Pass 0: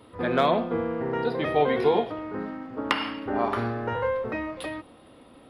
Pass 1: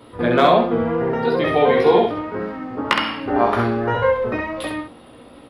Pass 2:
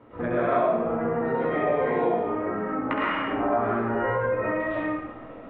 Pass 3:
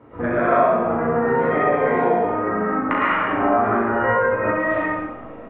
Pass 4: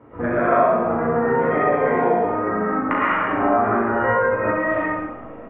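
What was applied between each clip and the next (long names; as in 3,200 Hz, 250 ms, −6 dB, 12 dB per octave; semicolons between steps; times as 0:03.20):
tape wow and flutter 28 cents; on a send: ambience of single reflections 17 ms −4.5 dB, 66 ms −3.5 dB; on the sum: level +5.5 dB
low-pass filter 2,200 Hz 24 dB per octave; convolution reverb RT60 0.85 s, pre-delay 70 ms, DRR −9 dB; downward compressor 2.5 to 1, threshold −19 dBFS, peak gain reduction 13 dB; level −7 dB
bass and treble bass +1 dB, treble −14 dB; on a send: loudspeakers that aren't time-aligned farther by 13 metres −4 dB, 69 metres −12 dB; on the sum: dynamic equaliser 1,500 Hz, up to +5 dB, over −38 dBFS, Q 0.95; level +3 dB
low-pass filter 2,800 Hz 12 dB per octave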